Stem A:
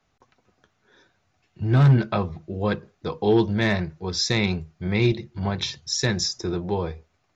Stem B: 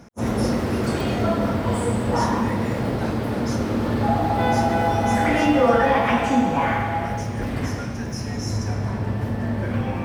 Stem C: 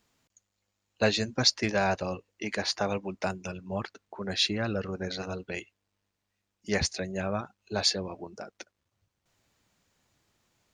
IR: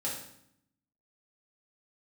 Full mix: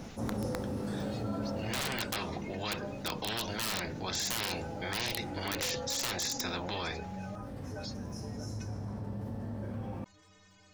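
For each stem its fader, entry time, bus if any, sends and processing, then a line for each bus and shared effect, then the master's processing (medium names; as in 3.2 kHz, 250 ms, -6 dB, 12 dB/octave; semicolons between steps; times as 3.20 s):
-8.0 dB, 0.00 s, no send, peaking EQ 1.1 kHz -7 dB 0.89 oct; spectrum-flattening compressor 10:1
1.50 s -9.5 dB -> 2.25 s -21.5 dB, 0.00 s, send -12.5 dB, peaking EQ 2.2 kHz -9.5 dB 1.5 oct; auto duck -17 dB, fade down 0.65 s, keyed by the first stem
-6.0 dB, 0.00 s, no send, spectral gate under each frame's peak -20 dB strong; compression 2:1, threshold -36 dBFS, peak gain reduction 10 dB; inharmonic resonator 91 Hz, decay 0.47 s, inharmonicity 0.03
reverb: on, RT60 0.70 s, pre-delay 3 ms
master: integer overflow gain 25.5 dB; level flattener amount 50%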